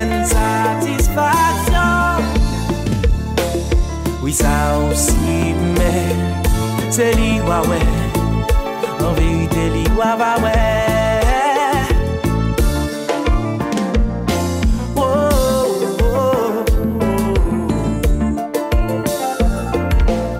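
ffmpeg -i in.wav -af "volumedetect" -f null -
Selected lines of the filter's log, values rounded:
mean_volume: -15.4 dB
max_volume: -4.7 dB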